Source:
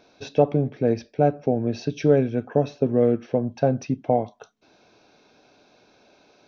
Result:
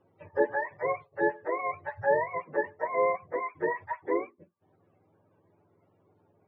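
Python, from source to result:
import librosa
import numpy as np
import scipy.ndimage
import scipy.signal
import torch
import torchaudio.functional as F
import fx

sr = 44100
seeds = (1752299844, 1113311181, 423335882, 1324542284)

y = fx.octave_mirror(x, sr, pivot_hz=500.0)
y = scipy.signal.sosfilt(scipy.signal.butter(2, 3100.0, 'lowpass', fs=sr, output='sos'), y)
y = fx.low_shelf(y, sr, hz=160.0, db=-11.0)
y = F.gain(torch.from_numpy(y), -5.0).numpy()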